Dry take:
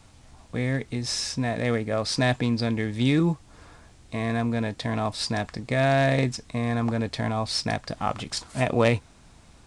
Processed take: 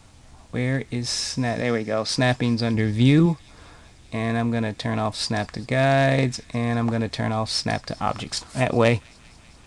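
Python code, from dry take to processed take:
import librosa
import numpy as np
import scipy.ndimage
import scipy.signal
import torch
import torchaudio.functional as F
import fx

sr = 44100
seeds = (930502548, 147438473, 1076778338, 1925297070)

y = fx.bandpass_edges(x, sr, low_hz=140.0, high_hz=6700.0, at=(1.61, 2.09))
y = fx.low_shelf(y, sr, hz=180.0, db=7.5, at=(2.74, 3.26))
y = fx.echo_wet_highpass(y, sr, ms=196, feedback_pct=78, hz=2600.0, wet_db=-22.5)
y = y * librosa.db_to_amplitude(2.5)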